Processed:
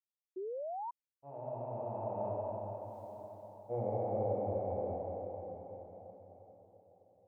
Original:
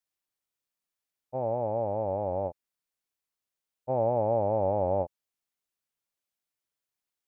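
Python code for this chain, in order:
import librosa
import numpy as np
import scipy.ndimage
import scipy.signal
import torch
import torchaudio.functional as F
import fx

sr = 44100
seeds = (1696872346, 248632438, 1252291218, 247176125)

y = fx.doppler_pass(x, sr, speed_mps=26, closest_m=1.9, pass_at_s=2.95)
y = fx.rev_plate(y, sr, seeds[0], rt60_s=4.6, hf_ratio=0.8, predelay_ms=0, drr_db=-9.0)
y = fx.spec_paint(y, sr, seeds[1], shape='rise', start_s=0.36, length_s=0.55, low_hz=360.0, high_hz=990.0, level_db=-46.0)
y = F.gain(torch.from_numpy(y), 6.0).numpy()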